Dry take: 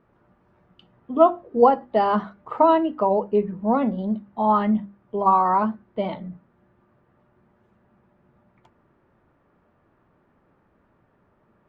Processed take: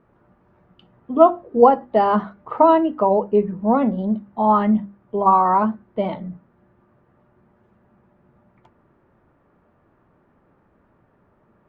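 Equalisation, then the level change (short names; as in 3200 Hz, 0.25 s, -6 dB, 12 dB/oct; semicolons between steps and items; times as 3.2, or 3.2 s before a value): high shelf 3300 Hz -8.5 dB; +3.5 dB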